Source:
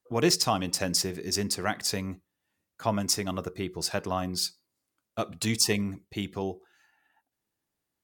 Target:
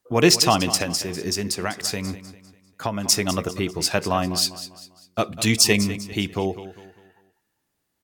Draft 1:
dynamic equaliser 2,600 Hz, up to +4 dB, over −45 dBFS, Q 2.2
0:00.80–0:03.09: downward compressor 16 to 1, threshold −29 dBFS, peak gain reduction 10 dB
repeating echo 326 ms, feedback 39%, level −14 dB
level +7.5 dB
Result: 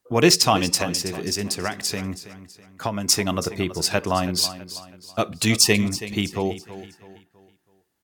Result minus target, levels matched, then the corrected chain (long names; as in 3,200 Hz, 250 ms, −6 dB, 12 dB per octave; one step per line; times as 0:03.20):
echo 127 ms late
dynamic equaliser 2,600 Hz, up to +4 dB, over −45 dBFS, Q 2.2
0:00.80–0:03.09: downward compressor 16 to 1, threshold −29 dBFS, peak gain reduction 10 dB
repeating echo 199 ms, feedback 39%, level −14 dB
level +7.5 dB